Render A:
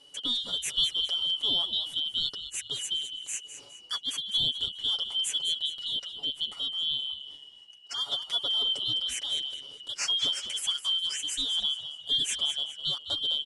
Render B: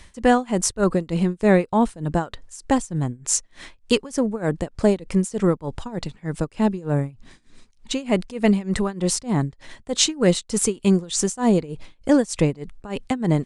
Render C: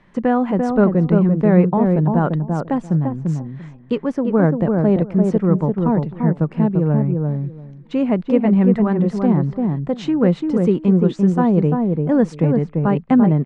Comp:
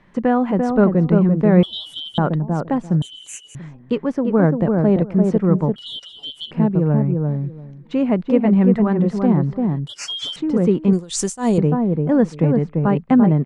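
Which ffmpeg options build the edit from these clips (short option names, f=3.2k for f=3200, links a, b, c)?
-filter_complex "[0:a]asplit=4[a][b][c][d];[2:a]asplit=6[e][f][g][h][i][j];[e]atrim=end=1.632[k];[a]atrim=start=1.628:end=2.182[l];[f]atrim=start=2.178:end=3.022[m];[b]atrim=start=3.018:end=3.552[n];[g]atrim=start=3.548:end=5.762[o];[c]atrim=start=5.758:end=6.512[p];[h]atrim=start=6.508:end=9.872[q];[d]atrim=start=9.868:end=10.362[r];[i]atrim=start=10.358:end=10.932[s];[1:a]atrim=start=10.928:end=11.582[t];[j]atrim=start=11.578[u];[k][l]acrossfade=d=0.004:c1=hsin:c2=hsin[v];[v][m]acrossfade=d=0.004:c1=hsin:c2=hsin[w];[w][n]acrossfade=d=0.004:c1=hsin:c2=hsin[x];[x][o]acrossfade=d=0.004:c1=hsin:c2=hsin[y];[y][p]acrossfade=d=0.004:c1=hsin:c2=hsin[z];[z][q]acrossfade=d=0.004:c1=hsin:c2=hsin[aa];[aa][r]acrossfade=d=0.004:c1=hsin:c2=hsin[ab];[ab][s]acrossfade=d=0.004:c1=hsin:c2=hsin[ac];[ac][t]acrossfade=d=0.004:c1=hsin:c2=hsin[ad];[ad][u]acrossfade=d=0.004:c1=hsin:c2=hsin"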